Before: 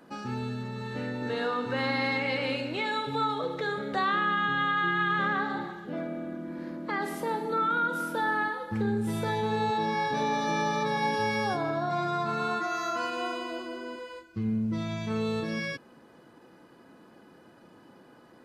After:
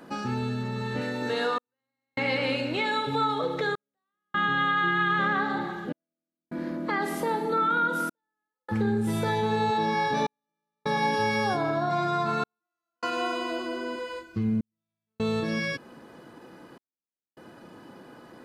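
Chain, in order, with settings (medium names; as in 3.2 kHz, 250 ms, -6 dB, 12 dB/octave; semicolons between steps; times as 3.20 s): 1.01–1.81 s: tone controls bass -6 dB, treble +6 dB; in parallel at +1 dB: compression, threshold -36 dBFS, peak gain reduction 12 dB; on the sum: trance gate "xxxxxxxx..." 76 bpm -60 dB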